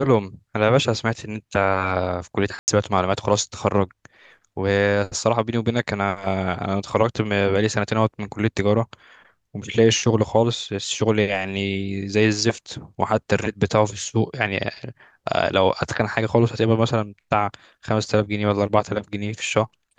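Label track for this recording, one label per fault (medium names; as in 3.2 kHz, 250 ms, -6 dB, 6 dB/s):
2.590000	2.680000	dropout 89 ms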